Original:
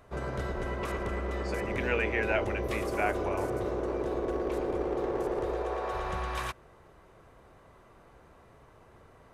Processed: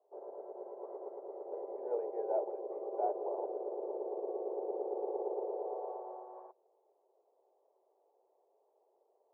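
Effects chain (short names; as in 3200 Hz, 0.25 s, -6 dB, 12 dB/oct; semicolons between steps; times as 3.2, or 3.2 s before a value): elliptic band-pass 390–860 Hz, stop band 80 dB; upward expander 1.5:1, over -49 dBFS; gain -1.5 dB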